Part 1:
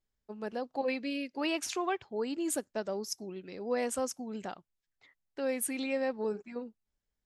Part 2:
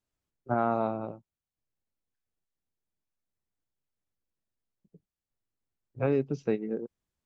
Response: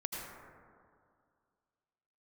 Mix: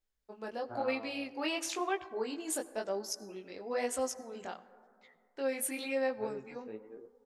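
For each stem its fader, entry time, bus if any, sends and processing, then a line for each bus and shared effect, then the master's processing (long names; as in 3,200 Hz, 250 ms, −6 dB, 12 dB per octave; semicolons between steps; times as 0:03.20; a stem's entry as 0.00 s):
+1.5 dB, 0.00 s, send −15 dB, no processing
+2.0 dB, 0.20 s, no send, flanger 0.34 Hz, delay 7.1 ms, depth 5 ms, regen +60%; automatic ducking −12 dB, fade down 1.15 s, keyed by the first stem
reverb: on, RT60 2.2 s, pre-delay 72 ms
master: parametric band 150 Hz −9.5 dB 1.6 octaves; chorus effect 1 Hz, delay 15 ms, depth 7.5 ms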